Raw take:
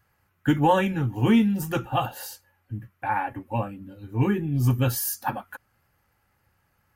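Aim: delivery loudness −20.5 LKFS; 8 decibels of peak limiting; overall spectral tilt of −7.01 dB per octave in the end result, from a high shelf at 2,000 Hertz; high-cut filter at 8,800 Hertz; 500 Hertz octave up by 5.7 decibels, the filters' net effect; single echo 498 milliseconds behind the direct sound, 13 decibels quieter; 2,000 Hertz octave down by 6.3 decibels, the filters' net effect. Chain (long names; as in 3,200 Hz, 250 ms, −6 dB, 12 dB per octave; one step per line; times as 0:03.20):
low-pass filter 8,800 Hz
parametric band 500 Hz +7.5 dB
high-shelf EQ 2,000 Hz −9 dB
parametric band 2,000 Hz −4 dB
brickwall limiter −14 dBFS
single-tap delay 498 ms −13 dB
level +5.5 dB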